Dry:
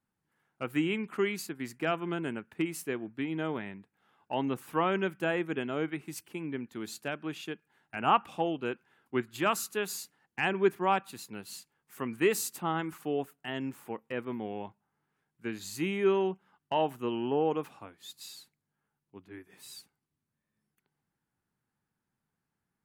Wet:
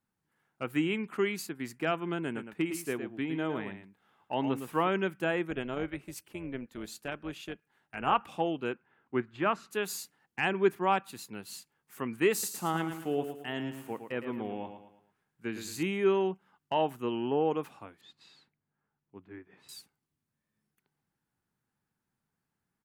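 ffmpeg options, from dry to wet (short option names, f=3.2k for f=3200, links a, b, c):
-filter_complex "[0:a]asplit=3[a][b][c];[a]afade=t=out:st=2.34:d=0.02[d];[b]aecho=1:1:110:0.376,afade=t=in:st=2.34:d=0.02,afade=t=out:st=4.87:d=0.02[e];[c]afade=t=in:st=4.87:d=0.02[f];[d][e][f]amix=inputs=3:normalize=0,asettb=1/sr,asplit=3[g][h][i];[g]atrim=end=5.504[j];[h]atrim=start=5.5:end=8.21,asetpts=PTS-STARTPTS,afade=t=in:d=0.004:c=qsin,afade=t=out:st=2.706:d=0.004:c=qsin,tremolo=f=260:d=0.519[k];[i]atrim=start=8.206[l];[j][k]acrossfade=d=0.004:c1=hsin:c2=qsin[m];[m][l]acrossfade=d=0.004:c1=qsin:c2=hsin,asettb=1/sr,asplit=3[n][o][p];[n]atrim=end=8.724[q];[o]atrim=start=8.72:end=9.71,asetpts=PTS-STARTPTS,afade=t=in:d=0.004:c=qsin,afade=t=out:st=0.986:d=0.004:c=qsin,lowpass=2.2k[r];[p]atrim=start=9.706[s];[q][r]acrossfade=d=0.004:c1=hsin:c2=qsin[t];[t][s]acrossfade=d=0.004:c1=qsin:c2=hsin,asettb=1/sr,asplit=3[u][v][w];[u]atrim=end=12.324[x];[v]atrim=start=12.32:end=15.83,asetpts=PTS-STARTPTS,afade=t=in:d=0.004:c=qsin,afade=t=out:st=3.506:d=0.004:c=qsin,aecho=1:1:111|222|333|444:0.376|0.15|0.0601|0.0241,atrim=end_sample=154791[y];[w]atrim=start=15.826[z];[x][y]acrossfade=d=0.004:c1=hsin:c2=qsin[aa];[aa][z]acrossfade=d=0.004:c1=qsin:c2=hsin,asettb=1/sr,asplit=3[ab][ac][ad];[ab]atrim=end=18.014[ae];[ac]atrim=start=18.01:end=19.69,asetpts=PTS-STARTPTS,afade=t=in:d=0.004:c=qsin,afade=t=out:st=1.676:d=0.004:c=qsin,lowpass=2.3k[af];[ad]atrim=start=19.686[ag];[ae][af]acrossfade=d=0.004:c1=hsin:c2=qsin[ah];[ah][ag]acrossfade=d=0.004:c1=qsin:c2=hsin"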